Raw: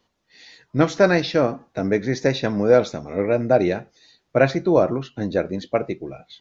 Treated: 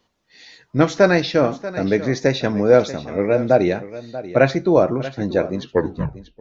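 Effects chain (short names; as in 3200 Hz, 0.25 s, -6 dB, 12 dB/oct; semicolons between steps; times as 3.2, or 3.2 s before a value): tape stop at the end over 0.82 s; echo 0.636 s -15 dB; gain +2 dB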